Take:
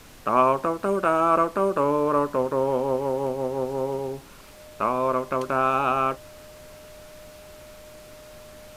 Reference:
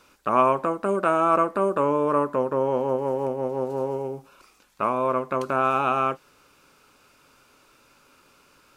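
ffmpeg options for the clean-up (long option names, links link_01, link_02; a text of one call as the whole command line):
ffmpeg -i in.wav -af "bandreject=frequency=610:width=30,afftdn=noise_reduction=13:noise_floor=-46" out.wav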